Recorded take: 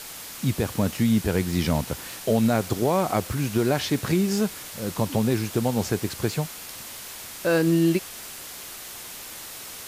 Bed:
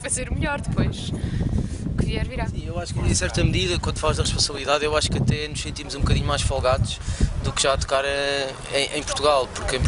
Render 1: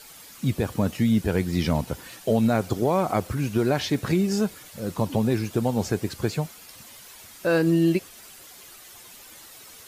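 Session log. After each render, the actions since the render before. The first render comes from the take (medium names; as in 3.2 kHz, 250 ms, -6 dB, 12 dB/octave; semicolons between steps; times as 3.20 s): noise reduction 10 dB, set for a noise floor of -39 dBFS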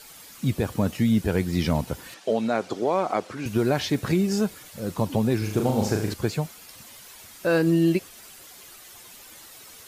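2.14–3.46 s: band-pass 290–6100 Hz; 5.38–6.14 s: flutter echo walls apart 6.6 m, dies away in 0.56 s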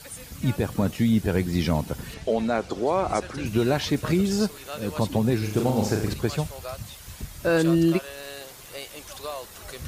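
add bed -16 dB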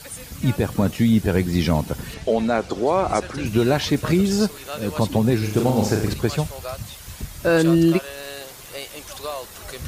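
trim +4 dB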